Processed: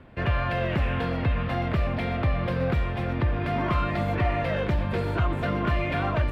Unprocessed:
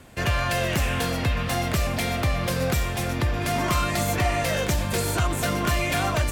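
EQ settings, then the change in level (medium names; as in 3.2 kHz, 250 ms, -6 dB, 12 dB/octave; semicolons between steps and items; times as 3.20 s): distance through air 430 m; band-stop 750 Hz, Q 17; 0.0 dB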